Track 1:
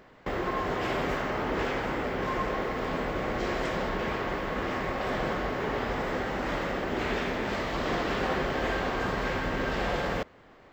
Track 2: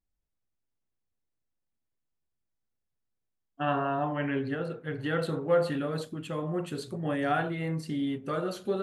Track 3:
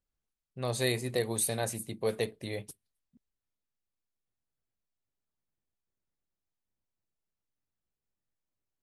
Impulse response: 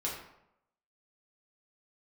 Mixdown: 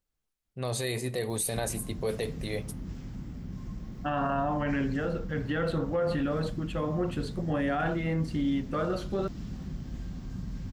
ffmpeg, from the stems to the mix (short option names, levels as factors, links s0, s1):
-filter_complex "[0:a]firequalizer=gain_entry='entry(180,0);entry(430,-28);entry(1900,-28);entry(5600,-10)':delay=0.05:min_phase=1,acompressor=mode=upward:threshold=0.0178:ratio=2.5,adelay=1300,volume=0.944[s0];[1:a]lowpass=f=3400:p=1,bandreject=f=410:w=12,adelay=450,volume=1.41[s1];[2:a]volume=1.33,asplit=2[s2][s3];[s3]volume=0.1[s4];[3:a]atrim=start_sample=2205[s5];[s4][s5]afir=irnorm=-1:irlink=0[s6];[s0][s1][s2][s6]amix=inputs=4:normalize=0,alimiter=limit=0.0891:level=0:latency=1:release=11"